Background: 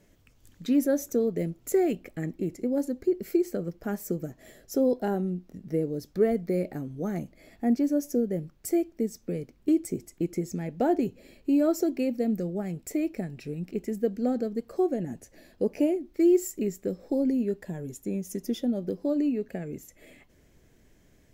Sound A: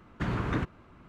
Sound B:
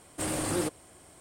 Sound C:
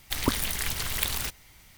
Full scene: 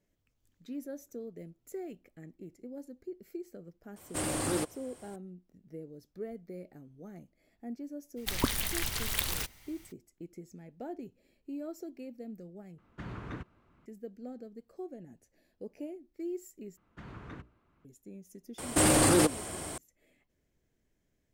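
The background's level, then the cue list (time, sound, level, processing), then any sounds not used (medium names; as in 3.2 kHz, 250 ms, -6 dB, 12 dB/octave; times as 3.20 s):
background -17 dB
3.96 s: add B -1.5 dB
8.16 s: add C -3.5 dB, fades 0.02 s
12.78 s: replace with A -11.5 dB
16.77 s: replace with A -15.5 dB + hum notches 60/120/180/240/300/360/420/480/540/600 Hz
18.58 s: add B -13.5 dB + loudness maximiser +28 dB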